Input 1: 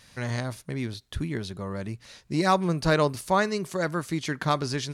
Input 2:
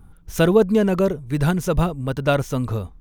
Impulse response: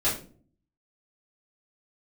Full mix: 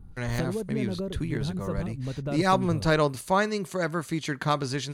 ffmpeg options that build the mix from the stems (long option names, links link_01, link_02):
-filter_complex "[0:a]agate=range=-32dB:threshold=-50dB:ratio=16:detection=peak,volume=-0.5dB[link_01];[1:a]tiltshelf=frequency=640:gain=6.5,acompressor=threshold=-23dB:ratio=5,volume=-6.5dB[link_02];[link_01][link_02]amix=inputs=2:normalize=0,bandreject=frequency=5400:width=8.6"